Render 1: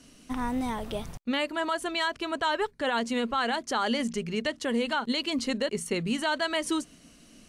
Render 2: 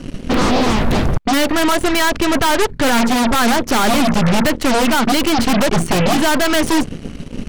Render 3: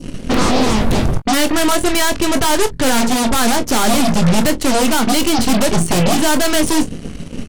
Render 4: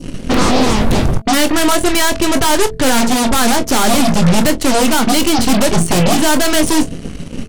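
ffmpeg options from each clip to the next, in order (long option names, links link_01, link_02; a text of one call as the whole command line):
ffmpeg -i in.wav -af "bass=frequency=250:gain=14,treble=frequency=4000:gain=-12,aeval=exprs='0.266*sin(PI/2*3.98*val(0)/0.266)':channel_layout=same,aeval=exprs='0.266*(cos(1*acos(clip(val(0)/0.266,-1,1)))-cos(1*PI/2))+0.0841*(cos(6*acos(clip(val(0)/0.266,-1,1)))-cos(6*PI/2))':channel_layout=same" out.wav
ffmpeg -i in.wav -filter_complex "[0:a]equalizer=frequency=9100:width=0.82:gain=5.5,asplit=2[link_01][link_02];[link_02]aecho=0:1:23|42:0.335|0.133[link_03];[link_01][link_03]amix=inputs=2:normalize=0,adynamicequalizer=threshold=0.0355:dfrequency=1600:dqfactor=0.8:tfrequency=1600:tqfactor=0.8:attack=5:release=100:ratio=0.375:range=2:mode=cutabove:tftype=bell" out.wav
ffmpeg -i in.wav -af "bandreject=frequency=219.8:width_type=h:width=4,bandreject=frequency=439.6:width_type=h:width=4,bandreject=frequency=659.4:width_type=h:width=4,volume=2dB" out.wav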